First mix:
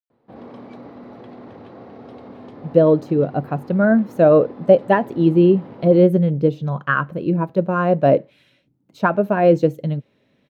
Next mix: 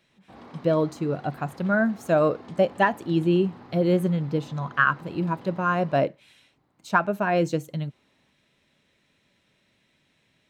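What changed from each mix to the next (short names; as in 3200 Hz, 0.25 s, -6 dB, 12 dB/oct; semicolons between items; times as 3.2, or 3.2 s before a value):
speech: entry -2.10 s; master: add ten-band EQ 125 Hz -6 dB, 250 Hz -6 dB, 500 Hz -10 dB, 8000 Hz +11 dB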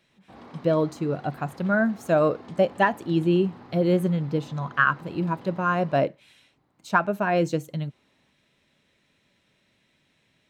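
none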